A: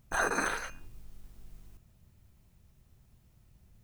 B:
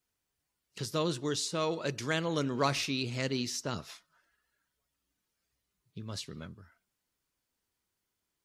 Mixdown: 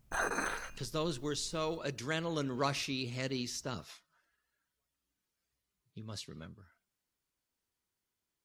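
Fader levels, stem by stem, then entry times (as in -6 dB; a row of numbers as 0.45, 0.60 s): -4.5, -4.0 dB; 0.00, 0.00 s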